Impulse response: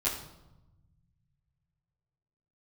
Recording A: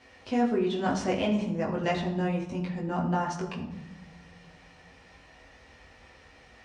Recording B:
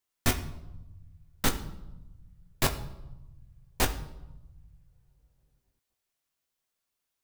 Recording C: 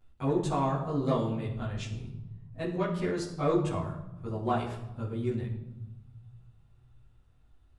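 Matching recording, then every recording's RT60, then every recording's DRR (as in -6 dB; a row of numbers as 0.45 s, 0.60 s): C; 1.0 s, 1.0 s, 0.95 s; -3.5 dB, 4.0 dB, -9.0 dB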